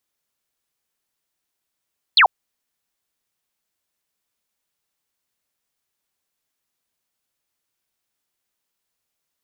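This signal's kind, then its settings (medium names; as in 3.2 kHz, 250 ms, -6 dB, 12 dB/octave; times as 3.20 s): laser zap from 4.6 kHz, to 670 Hz, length 0.09 s sine, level -8.5 dB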